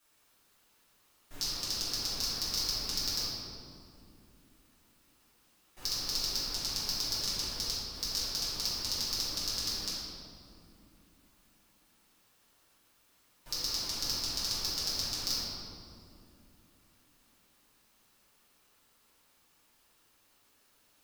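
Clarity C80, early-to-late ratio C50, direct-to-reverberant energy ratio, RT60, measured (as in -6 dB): 0.0 dB, -2.0 dB, -11.0 dB, 2.7 s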